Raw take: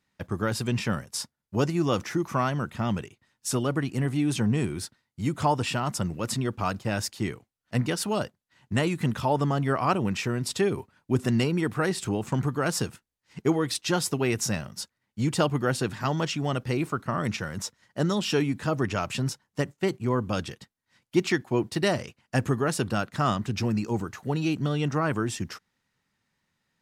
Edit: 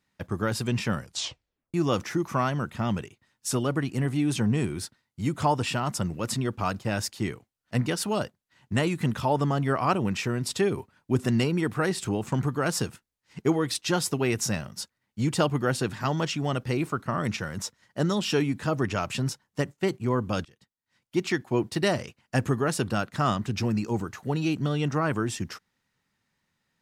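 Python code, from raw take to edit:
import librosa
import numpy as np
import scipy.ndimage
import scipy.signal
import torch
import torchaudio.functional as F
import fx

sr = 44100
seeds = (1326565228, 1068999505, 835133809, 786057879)

y = fx.edit(x, sr, fx.tape_stop(start_s=0.99, length_s=0.75),
    fx.fade_in_from(start_s=20.45, length_s=1.1, floor_db=-23.5), tone=tone)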